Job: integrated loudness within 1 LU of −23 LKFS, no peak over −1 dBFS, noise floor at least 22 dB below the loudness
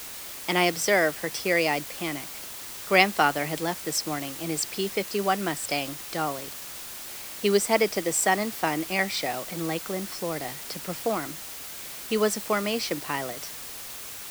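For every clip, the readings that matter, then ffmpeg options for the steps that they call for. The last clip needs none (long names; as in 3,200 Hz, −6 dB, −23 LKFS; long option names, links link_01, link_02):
background noise floor −39 dBFS; target noise floor −49 dBFS; integrated loudness −27.0 LKFS; sample peak −2.5 dBFS; target loudness −23.0 LKFS
→ -af "afftdn=noise_reduction=10:noise_floor=-39"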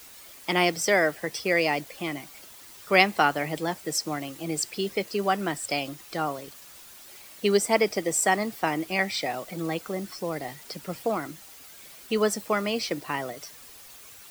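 background noise floor −48 dBFS; target noise floor −49 dBFS
→ -af "afftdn=noise_reduction=6:noise_floor=-48"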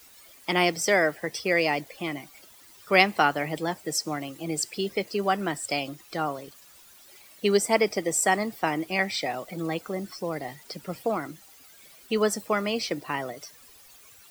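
background noise floor −53 dBFS; integrated loudness −27.0 LKFS; sample peak −3.0 dBFS; target loudness −23.0 LKFS
→ -af "volume=4dB,alimiter=limit=-1dB:level=0:latency=1"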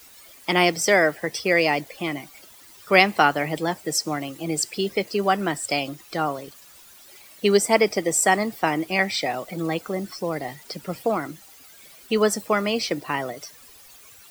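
integrated loudness −23.0 LKFS; sample peak −1.0 dBFS; background noise floor −49 dBFS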